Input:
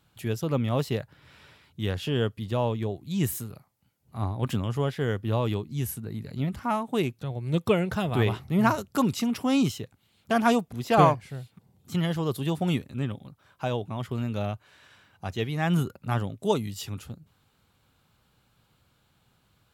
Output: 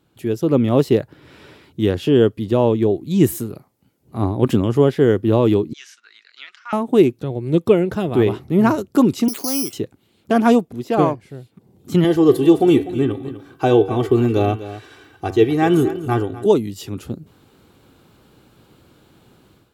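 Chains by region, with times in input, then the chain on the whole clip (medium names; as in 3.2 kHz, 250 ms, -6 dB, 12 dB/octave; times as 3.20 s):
5.73–6.73 s: gate -39 dBFS, range -8 dB + Chebyshev band-pass 1.4–6 kHz, order 3
9.28–9.73 s: compression 2.5:1, threshold -30 dBFS + frequency weighting A + careless resampling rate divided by 8×, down filtered, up zero stuff
12.04–16.46 s: comb 2.6 ms, depth 67% + de-hum 95.17 Hz, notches 40 + delay 249 ms -14.5 dB
whole clip: peaking EQ 340 Hz +14 dB 1.3 oct; level rider; trim -1 dB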